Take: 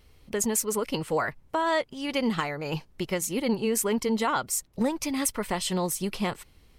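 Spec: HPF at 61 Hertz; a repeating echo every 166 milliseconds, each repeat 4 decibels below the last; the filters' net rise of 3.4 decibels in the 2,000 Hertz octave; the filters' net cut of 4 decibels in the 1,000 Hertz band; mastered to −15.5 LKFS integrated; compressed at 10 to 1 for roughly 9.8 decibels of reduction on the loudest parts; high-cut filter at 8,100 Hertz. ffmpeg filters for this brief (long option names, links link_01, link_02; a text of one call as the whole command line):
ffmpeg -i in.wav -af "highpass=61,lowpass=8100,equalizer=frequency=1000:width_type=o:gain=-6.5,equalizer=frequency=2000:width_type=o:gain=6,acompressor=threshold=-32dB:ratio=10,aecho=1:1:166|332|498|664|830|996|1162|1328|1494:0.631|0.398|0.25|0.158|0.0994|0.0626|0.0394|0.0249|0.0157,volume=18.5dB" out.wav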